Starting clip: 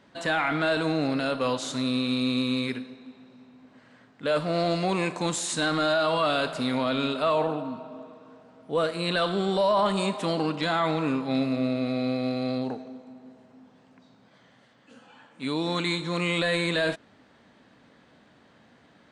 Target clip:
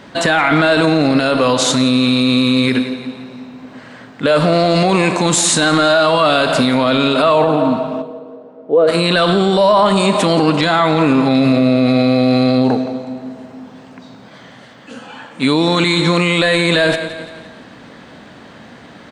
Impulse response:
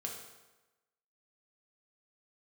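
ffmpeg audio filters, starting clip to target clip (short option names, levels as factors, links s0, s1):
-filter_complex "[0:a]asplit=3[s0][s1][s2];[s0]afade=t=out:st=8.01:d=0.02[s3];[s1]bandpass=f=450:t=q:w=2:csg=0,afade=t=in:st=8.01:d=0.02,afade=t=out:st=8.87:d=0.02[s4];[s2]afade=t=in:st=8.87:d=0.02[s5];[s3][s4][s5]amix=inputs=3:normalize=0,aecho=1:1:172|344|516|688:0.141|0.0664|0.0312|0.0147,alimiter=level_in=12.6:limit=0.891:release=50:level=0:latency=1,volume=0.708"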